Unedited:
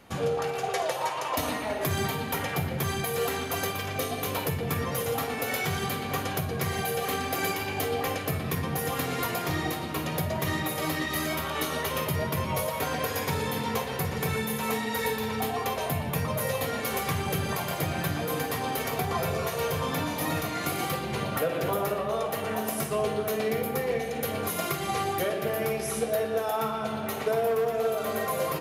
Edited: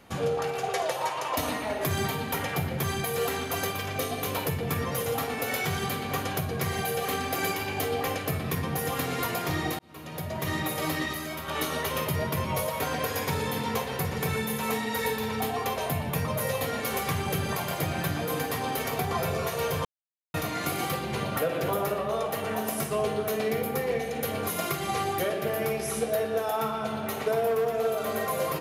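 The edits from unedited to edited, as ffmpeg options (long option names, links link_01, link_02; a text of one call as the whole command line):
ffmpeg -i in.wav -filter_complex "[0:a]asplit=6[link_01][link_02][link_03][link_04][link_05][link_06];[link_01]atrim=end=9.79,asetpts=PTS-STARTPTS,afade=type=out:start_time=9.786:duration=0.004:curve=hsin[link_07];[link_02]atrim=start=9.79:end=11.132,asetpts=PTS-STARTPTS,afade=type=in:duration=0.82[link_08];[link_03]atrim=start=11.128:end=11.482,asetpts=PTS-STARTPTS,volume=-5.5dB[link_09];[link_04]atrim=start=11.478:end=19.85,asetpts=PTS-STARTPTS,afade=type=out:start_time=8.368:duration=0.004:curve=hsin[link_10];[link_05]atrim=start=19.85:end=20.34,asetpts=PTS-STARTPTS,volume=0[link_11];[link_06]atrim=start=20.34,asetpts=PTS-STARTPTS,afade=type=in:duration=0.004:curve=hsin[link_12];[link_07][link_08]concat=n=2:v=0:a=1[link_13];[link_13][link_09]acrossfade=duration=0.004:curve1=hsin:curve2=hsin[link_14];[link_10][link_11][link_12]concat=n=3:v=0:a=1[link_15];[link_14][link_15]acrossfade=duration=0.004:curve1=hsin:curve2=hsin" out.wav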